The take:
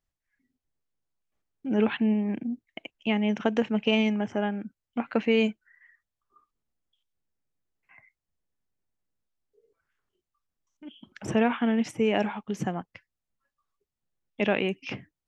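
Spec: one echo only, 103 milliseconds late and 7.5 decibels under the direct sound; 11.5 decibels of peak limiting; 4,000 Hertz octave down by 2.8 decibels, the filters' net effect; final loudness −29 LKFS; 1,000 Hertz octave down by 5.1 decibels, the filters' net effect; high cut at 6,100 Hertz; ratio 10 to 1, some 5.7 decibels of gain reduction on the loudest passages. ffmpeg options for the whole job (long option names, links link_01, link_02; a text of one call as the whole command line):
ffmpeg -i in.wav -af "lowpass=6100,equalizer=frequency=1000:width_type=o:gain=-7.5,equalizer=frequency=4000:width_type=o:gain=-3.5,acompressor=threshold=-25dB:ratio=10,alimiter=level_in=1.5dB:limit=-24dB:level=0:latency=1,volume=-1.5dB,aecho=1:1:103:0.422,volume=6.5dB" out.wav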